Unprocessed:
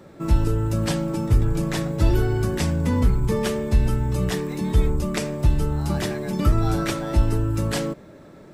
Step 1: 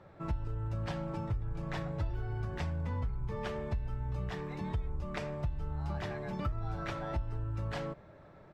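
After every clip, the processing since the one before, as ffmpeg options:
-af "firequalizer=gain_entry='entry(100,0);entry(240,-12);entry(720,0);entry(9400,-24)':delay=0.05:min_phase=1,acompressor=threshold=0.0447:ratio=6,volume=0.562"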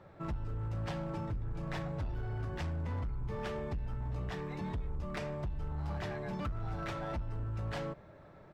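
-af "asoftclip=type=hard:threshold=0.0237"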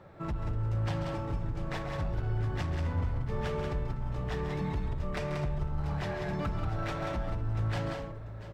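-af "aecho=1:1:137|184|246|691|838:0.316|0.562|0.168|0.158|0.251,volume=1.41"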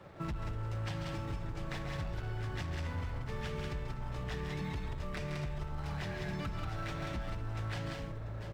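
-filter_complex "[0:a]aeval=exprs='sgn(val(0))*max(abs(val(0))-0.001,0)':c=same,acrossover=split=330|1600[s0][s1][s2];[s0]acompressor=threshold=0.00891:ratio=4[s3];[s1]acompressor=threshold=0.00251:ratio=4[s4];[s2]acompressor=threshold=0.00398:ratio=4[s5];[s3][s4][s5]amix=inputs=3:normalize=0,volume=1.5"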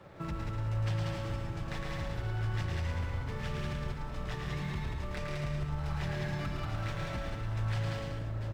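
-af "aecho=1:1:110|192.5|254.4|300.8|335.6:0.631|0.398|0.251|0.158|0.1"

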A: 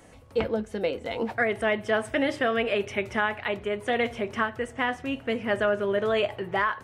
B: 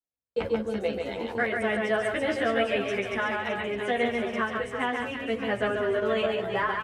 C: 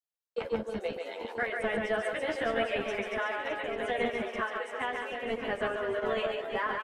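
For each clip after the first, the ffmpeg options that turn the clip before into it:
-filter_complex "[0:a]asplit=2[s0][s1];[s1]aecho=0:1:140|336|610.4|994.6|1532:0.631|0.398|0.251|0.158|0.1[s2];[s0][s2]amix=inputs=2:normalize=0,agate=range=0.00398:threshold=0.0178:ratio=16:detection=peak,asplit=2[s3][s4];[s4]adelay=11.5,afreqshift=-1.1[s5];[s3][s5]amix=inputs=2:normalize=1"
-filter_complex "[0:a]acrossover=split=340|820|4300[s0][s1][s2][s3];[s0]acrusher=bits=4:mix=0:aa=0.5[s4];[s4][s1][s2][s3]amix=inputs=4:normalize=0,asplit=2[s5][s6];[s6]adelay=1224,volume=0.501,highshelf=f=4000:g=-27.6[s7];[s5][s7]amix=inputs=2:normalize=0,volume=0.596"

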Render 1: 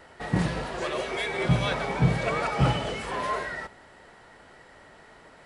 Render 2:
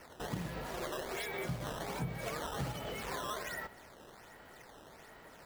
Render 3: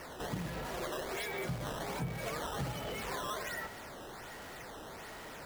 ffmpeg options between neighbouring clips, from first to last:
-af "acompressor=threshold=0.02:ratio=4,acrusher=samples=11:mix=1:aa=0.000001:lfo=1:lforange=17.6:lforate=1.3,volume=0.668"
-af "aeval=exprs='val(0)+0.5*0.00668*sgn(val(0))':c=same,volume=0.891"

